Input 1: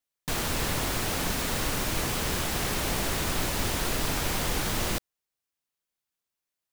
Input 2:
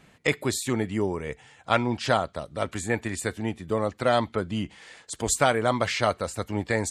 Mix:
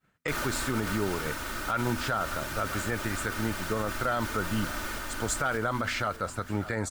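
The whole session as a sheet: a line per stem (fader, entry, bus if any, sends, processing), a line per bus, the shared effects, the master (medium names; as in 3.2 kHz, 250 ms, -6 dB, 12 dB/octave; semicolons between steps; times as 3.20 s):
-4.0 dB, 0.00 s, no send, echo send -9 dB, comb 3.3 ms, depth 63%; auto duck -11 dB, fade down 1.55 s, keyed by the second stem
-5.5 dB, 0.00 s, no send, echo send -23 dB, expander -46 dBFS; bass shelf 400 Hz +6 dB; de-hum 82.01 Hz, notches 3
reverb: none
echo: feedback delay 590 ms, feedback 46%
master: peaking EQ 1.4 kHz +13.5 dB 0.52 oct; peak limiter -18.5 dBFS, peak gain reduction 12.5 dB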